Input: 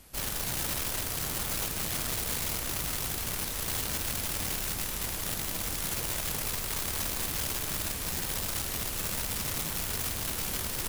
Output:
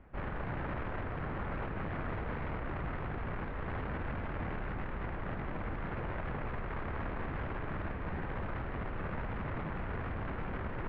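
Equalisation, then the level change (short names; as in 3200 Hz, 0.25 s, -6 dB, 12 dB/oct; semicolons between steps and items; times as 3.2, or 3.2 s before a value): LPF 1900 Hz 24 dB/oct; air absorption 170 m; +1.0 dB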